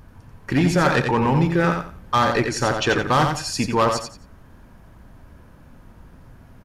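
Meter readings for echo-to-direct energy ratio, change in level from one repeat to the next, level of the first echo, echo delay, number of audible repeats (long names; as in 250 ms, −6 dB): −5.0 dB, −12.0 dB, −5.5 dB, 88 ms, 3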